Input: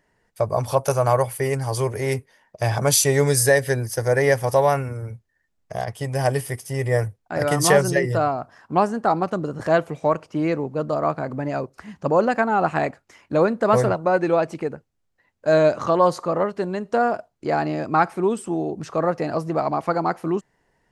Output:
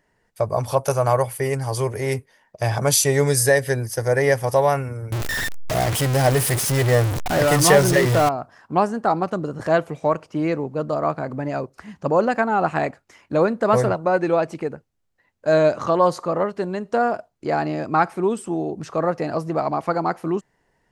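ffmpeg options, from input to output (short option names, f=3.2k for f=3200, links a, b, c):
-filter_complex "[0:a]asettb=1/sr,asplit=3[a][b][c];[a]atrim=end=5.124[d];[b]atrim=start=5.12:end=8.29,asetpts=PTS-STARTPTS,afade=t=in:d=0.004:c=qsin,afade=t=out:st=3.166:d=0.004:c=qsin,aeval=exprs='val(0)+0.5*0.126*sgn(val(0))':c=same[e];[c]atrim=start=8.286[f];[d][e]acrossfade=d=0.004:c1=hsin:c2=qsin[g];[g][f]acrossfade=d=0.004:c1=qsin:c2=hsin"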